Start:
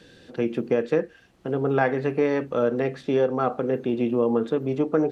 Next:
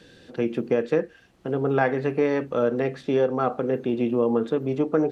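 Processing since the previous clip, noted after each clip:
no processing that can be heard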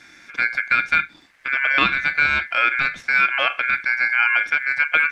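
ring modulation 1,900 Hz
level +6.5 dB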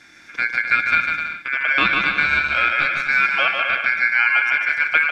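bouncing-ball delay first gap 150 ms, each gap 0.7×, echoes 5
level −1 dB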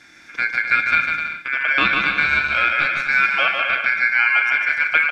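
double-tracking delay 38 ms −13 dB

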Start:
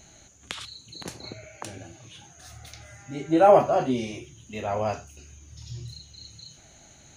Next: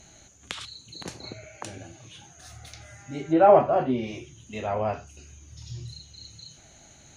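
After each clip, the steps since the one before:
treble cut that deepens with the level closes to 2,500 Hz, closed at −22.5 dBFS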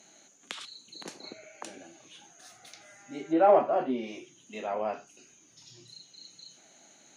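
high-pass filter 210 Hz 24 dB per octave
in parallel at −11.5 dB: soft clipping −13.5 dBFS, distortion −13 dB
on the sum: level −6 dB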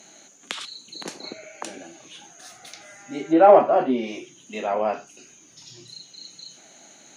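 parametric band 110 Hz −3.5 dB 0.25 octaves
level +8 dB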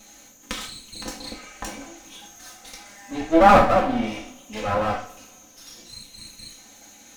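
lower of the sound and its delayed copy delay 3.9 ms
coupled-rooms reverb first 0.4 s, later 1.6 s, from −21 dB, DRR 1 dB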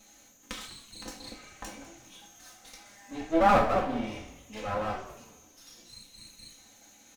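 echo with shifted repeats 200 ms, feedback 32%, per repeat −150 Hz, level −15.5 dB
level −8.5 dB

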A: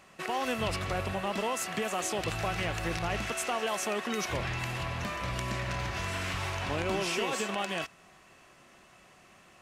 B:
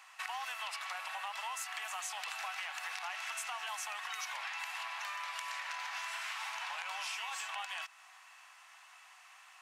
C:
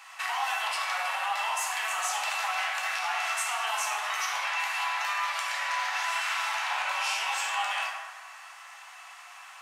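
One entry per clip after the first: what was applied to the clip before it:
elliptic high-pass filter 830 Hz, stop band 70 dB; downward compressor 5 to 1, threshold −40 dBFS, peak gain reduction 9 dB; level +2 dB
dense smooth reverb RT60 1.5 s, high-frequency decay 0.5×, DRR −3.5 dB; level +6 dB

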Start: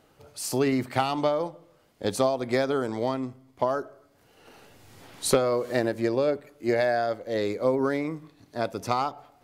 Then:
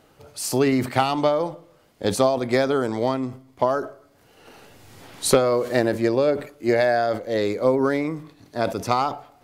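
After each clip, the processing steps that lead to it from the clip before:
level that may fall only so fast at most 140 dB per second
level +4.5 dB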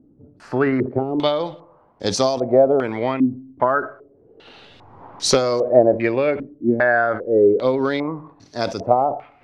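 low-pass on a step sequencer 2.5 Hz 270–5,600 Hz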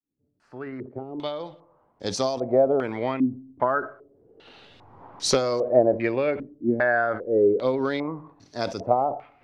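fade in at the beginning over 2.71 s
level −5 dB

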